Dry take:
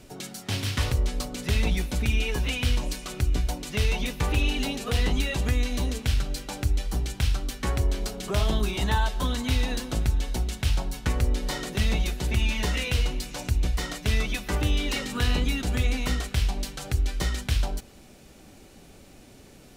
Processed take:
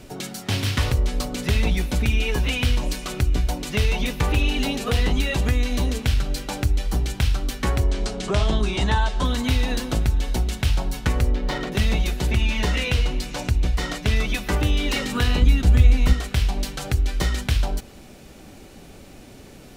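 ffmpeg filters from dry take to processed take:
ffmpeg -i in.wav -filter_complex "[0:a]asettb=1/sr,asplit=3[link_01][link_02][link_03];[link_01]atrim=end=7.844[link_04];[link_02]atrim=start=7.84:end=9.25,asetpts=PTS-STARTPTS,afade=type=in:duration=0.004:curve=qsin,afade=type=out:start_time=1.406:duration=0.004:curve=qsin,lowpass=frequency=8800:width=0.5412,lowpass=frequency=8800:width=1.3066[link_05];[link_03]atrim=start=9.246[link_06];[link_04][link_05]acrossfade=duration=0.004:curve1=hsin:curve2=qsin[link_07];[link_07][link_06]acrossfade=duration=0.004:curve1=qsin:curve2=hsin,asettb=1/sr,asplit=3[link_08][link_09][link_10];[link_08]atrim=end=11.314[link_11];[link_09]atrim=start=11.31:end=11.72,asetpts=PTS-STARTPTS,afade=type=in:duration=0.004:curve=qsin,afade=type=out:start_time=0.406:duration=0.004:curve=qsin,adynamicsmooth=sensitivity=4.5:basefreq=2300[link_12];[link_10]atrim=start=11.716[link_13];[link_11][link_12]acrossfade=duration=0.004:curve1=hsin:curve2=qsin[link_14];[link_14][link_13]acrossfade=duration=0.004:curve1=qsin:curve2=hsin,asettb=1/sr,asplit=3[link_15][link_16][link_17];[link_15]atrim=end=12.324[link_18];[link_16]atrim=start=12.32:end=14.16,asetpts=PTS-STARTPTS,afade=type=in:duration=0.004:curve=qsin,afade=type=out:start_time=1.836:duration=0.004:curve=qsin,highshelf=frequency=11000:gain=-8[link_19];[link_17]atrim=start=14.156[link_20];[link_18][link_19]acrossfade=duration=0.004:curve1=hsin:curve2=qsin[link_21];[link_21][link_20]acrossfade=duration=0.004:curve1=qsin:curve2=hsin,asettb=1/sr,asplit=3[link_22][link_23][link_24];[link_22]atrim=end=15.424[link_25];[link_23]atrim=start=15.42:end=16.13,asetpts=PTS-STARTPTS,afade=type=in:duration=0.004:curve=qsin,afade=type=out:start_time=0.706:duration=0.004:curve=qsin,equalizer=frequency=60:width_type=o:width=2.7:gain=12[link_26];[link_24]atrim=start=16.126[link_27];[link_25][link_26]acrossfade=duration=0.004:curve1=hsin:curve2=qsin[link_28];[link_28][link_27]acrossfade=duration=0.004:curve1=qsin:curve2=hsin,equalizer=frequency=8600:width_type=o:width=1.9:gain=-3,acompressor=threshold=-27dB:ratio=1.5,volume=6.5dB" out.wav

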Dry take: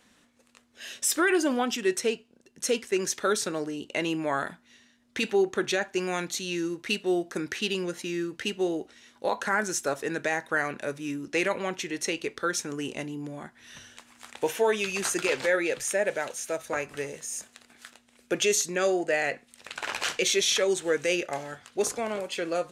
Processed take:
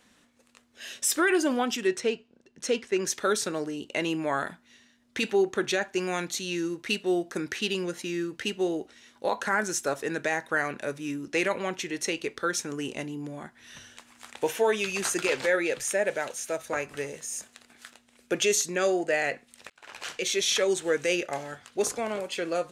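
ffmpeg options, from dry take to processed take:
ffmpeg -i in.wav -filter_complex "[0:a]asettb=1/sr,asplit=3[link_01][link_02][link_03];[link_01]atrim=end=1.874[link_04];[link_02]atrim=start=1.87:end=3.06,asetpts=PTS-STARTPTS,afade=type=in:duration=0.004:curve=qsin,afade=type=out:start_time=1.186:duration=0.004:curve=qsin,adynamicsmooth=sensitivity=1:basefreq=6200[link_05];[link_03]atrim=start=3.056[link_06];[link_04][link_05]acrossfade=duration=0.004:curve1=hsin:curve2=qsin[link_07];[link_07][link_06]acrossfade=duration=0.004:curve1=qsin:curve2=hsin,asplit=2[link_08][link_09];[link_08]atrim=end=19.7,asetpts=PTS-STARTPTS,afade=type=out:start_time=19.696:duration=0.004:curve=hsin[link_10];[link_09]atrim=start=19.7,asetpts=PTS-STARTPTS,afade=type=in:duration=0.89[link_11];[link_10][link_11]concat=n=2:v=0:a=1" out.wav

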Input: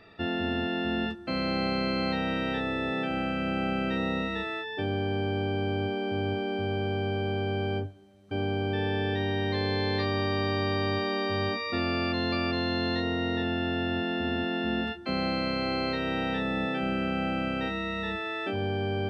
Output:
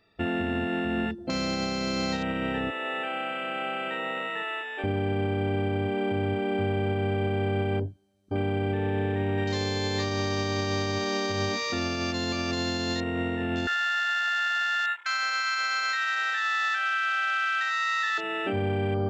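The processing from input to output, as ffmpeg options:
ffmpeg -i in.wav -filter_complex "[0:a]asettb=1/sr,asplit=3[link_01][link_02][link_03];[link_01]atrim=end=2.704[link_04];[link_02]atrim=start=2.7:end=4.84,asetpts=PTS-STARTPTS,afade=type=in:duration=0.004:curve=qsin,afade=type=out:start_time=2.136:duration=0.004:curve=qsin,highpass=620,lowpass=4000[link_05];[link_03]atrim=start=4.836[link_06];[link_04][link_05]acrossfade=duration=0.004:curve1=hsin:curve2=qsin[link_07];[link_07][link_06]acrossfade=duration=0.004:curve1=qsin:curve2=hsin,asettb=1/sr,asplit=3[link_08][link_09][link_10];[link_08]atrim=end=8.734[link_11];[link_09]atrim=start=8.73:end=9.38,asetpts=PTS-STARTPTS,afade=type=in:duration=0.004:curve=qsin,afade=type=out:start_time=0.646:duration=0.004:curve=qsin,highshelf=frequency=2200:gain=-8.5[link_12];[link_10]atrim=start=9.376[link_13];[link_11][link_12]acrossfade=duration=0.004:curve1=hsin:curve2=qsin[link_14];[link_14][link_13]acrossfade=duration=0.004:curve1=qsin:curve2=hsin,asettb=1/sr,asplit=3[link_15][link_16][link_17];[link_15]atrim=end=13.674[link_18];[link_16]atrim=start=13.67:end=18.18,asetpts=PTS-STARTPTS,afade=type=in:duration=0.004:curve=qsin,afade=type=out:start_time=4.506:duration=0.004:curve=qsin,highpass=frequency=1500:width_type=q:width=7.2[link_19];[link_17]atrim=start=18.176[link_20];[link_18][link_19]acrossfade=duration=0.004:curve1=hsin:curve2=qsin[link_21];[link_21][link_20]acrossfade=duration=0.004:curve1=qsin:curve2=hsin,afwtdn=0.0126,bass=frequency=250:gain=1,treble=frequency=4000:gain=9,alimiter=limit=-22.5dB:level=0:latency=1:release=194,volume=3.5dB" out.wav

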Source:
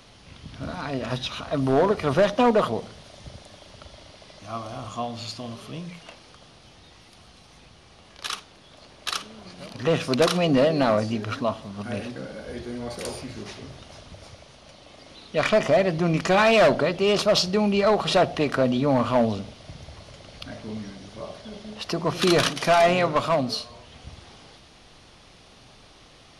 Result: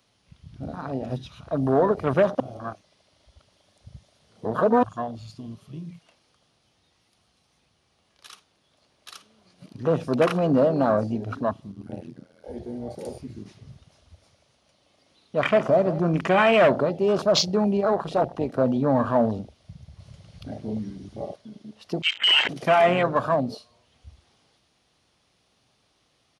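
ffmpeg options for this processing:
ffmpeg -i in.wav -filter_complex "[0:a]asettb=1/sr,asplit=3[link_01][link_02][link_03];[link_01]atrim=end=11.724[link_04];[link_02]atrim=start=11.72:end=12.44,asetpts=PTS-STARTPTS,afade=type=in:duration=0.004:curve=qsin,afade=type=out:start_time=0.716:duration=0.004:curve=qsin,tremolo=f=85:d=1[link_05];[link_03]atrim=start=12.436[link_06];[link_04][link_05]acrossfade=duration=0.004:curve1=hsin:curve2=qsin[link_07];[link_07][link_06]acrossfade=duration=0.004:curve1=qsin:curve2=hsin,asplit=3[link_08][link_09][link_10];[link_08]afade=type=out:start_time=13.66:duration=0.02[link_11];[link_09]aecho=1:1:165:0.211,afade=type=in:start_time=13.66:duration=0.02,afade=type=out:start_time=16.1:duration=0.02[link_12];[link_10]afade=type=in:start_time=16.1:duration=0.02[link_13];[link_11][link_12][link_13]amix=inputs=3:normalize=0,asettb=1/sr,asplit=3[link_14][link_15][link_16];[link_14]atrim=end=17.774[link_17];[link_15]atrim=start=17.77:end=18.58,asetpts=PTS-STARTPTS,afade=type=in:duration=0.004:curve=qsin,afade=type=out:start_time=0.806:duration=0.004:curve=qsin,tremolo=f=200:d=0.621[link_18];[link_16]atrim=start=18.576[link_19];[link_17][link_18]acrossfade=duration=0.004:curve1=hsin:curve2=qsin[link_20];[link_20][link_19]acrossfade=duration=0.004:curve1=qsin:curve2=hsin,asettb=1/sr,asplit=3[link_21][link_22][link_23];[link_21]atrim=end=22.024[link_24];[link_22]atrim=start=22.02:end=22.49,asetpts=PTS-STARTPTS,afade=type=in:duration=0.004:curve=qsin,afade=type=out:start_time=0.466:duration=0.004:curve=qsin,lowpass=frequency=2800:width_type=q:width=0.5098,lowpass=frequency=2800:width_type=q:width=0.6013,lowpass=frequency=2800:width_type=q:width=0.9,lowpass=frequency=2800:width_type=q:width=2.563,afreqshift=-3300[link_25];[link_23]atrim=start=22.486[link_26];[link_24][link_25]acrossfade=duration=0.004:curve1=hsin:curve2=qsin[link_27];[link_27][link_26]acrossfade=duration=0.004:curve1=qsin:curve2=hsin,asplit=5[link_28][link_29][link_30][link_31][link_32];[link_28]atrim=end=2.402[link_33];[link_29]atrim=start=2.398:end=4.832,asetpts=PTS-STARTPTS,areverse[link_34];[link_30]atrim=start=4.828:end=19.992[link_35];[link_31]atrim=start=19.988:end=21.362,asetpts=PTS-STARTPTS,volume=4.5dB[link_36];[link_32]atrim=start=21.358[link_37];[link_33][link_34]acrossfade=duration=0.004:curve1=hsin:curve2=hsin[link_38];[link_38][link_35]acrossfade=duration=0.004:curve1=hsin:curve2=hsin[link_39];[link_39][link_36]acrossfade=duration=0.004:curve1=hsin:curve2=hsin[link_40];[link_40][link_37]acrossfade=duration=0.004:curve1=hsin:curve2=hsin,afwtdn=0.0447,highpass=63,highshelf=frequency=7700:gain=7.5" out.wav

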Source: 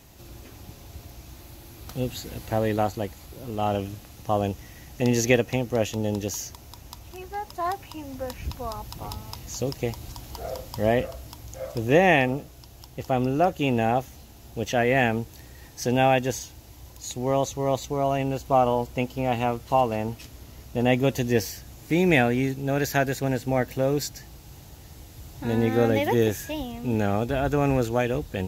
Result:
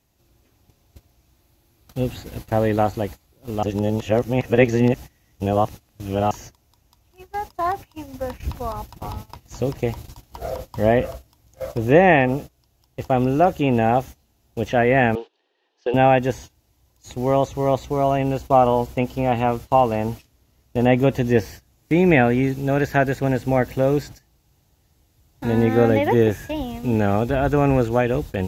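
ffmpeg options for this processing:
ffmpeg -i in.wav -filter_complex "[0:a]asettb=1/sr,asplit=3[link_01][link_02][link_03];[link_01]atrim=end=15.154[link_04];[link_02]atrim=start=15.15:end=15.94,asetpts=PTS-STARTPTS,afade=type=in:duration=0.004:curve=qsin,afade=type=out:start_time=0.786:duration=0.004:curve=qsin,highpass=frequency=400:width=0.5412,highpass=frequency=400:width=1.3066,equalizer=frequency=400:width_type=q:width=4:gain=6,equalizer=frequency=610:width_type=q:width=4:gain=-4,equalizer=frequency=1300:width_type=q:width=4:gain=-3,equalizer=frequency=2100:width_type=q:width=4:gain=-8,equalizer=frequency=3000:width_type=q:width=4:gain=5,lowpass=frequency=3900:width=0.5412,lowpass=frequency=3900:width=1.3066[link_05];[link_03]atrim=start=15.936[link_06];[link_04][link_05]acrossfade=duration=0.004:curve1=hsin:curve2=qsin[link_07];[link_07][link_06]acrossfade=duration=0.004:curve1=qsin:curve2=hsin,asplit=3[link_08][link_09][link_10];[link_08]atrim=end=3.632[link_11];[link_09]atrim=start=3.628:end=6.312,asetpts=PTS-STARTPTS,areverse[link_12];[link_10]atrim=start=6.308[link_13];[link_11][link_12]acrossfade=duration=0.004:curve1=hsin:curve2=hsin[link_14];[link_14][link_13]acrossfade=duration=0.004:curve1=hsin:curve2=hsin,agate=range=-21dB:threshold=-36dB:ratio=16:detection=peak,acrossover=split=2600[link_15][link_16];[link_16]acompressor=threshold=-48dB:ratio=4:attack=1:release=60[link_17];[link_15][link_17]amix=inputs=2:normalize=0,volume=5dB" out.wav

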